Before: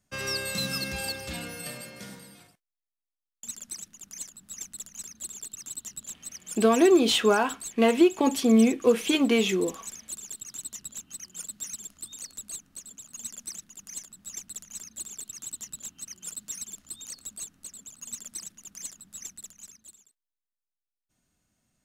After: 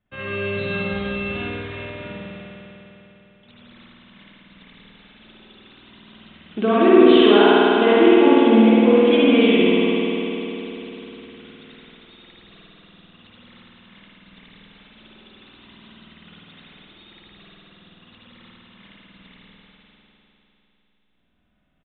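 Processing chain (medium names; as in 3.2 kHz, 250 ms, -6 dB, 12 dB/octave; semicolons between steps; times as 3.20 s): resampled via 8 kHz; spring tank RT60 3.7 s, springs 50 ms, chirp 45 ms, DRR -9 dB; trim -1 dB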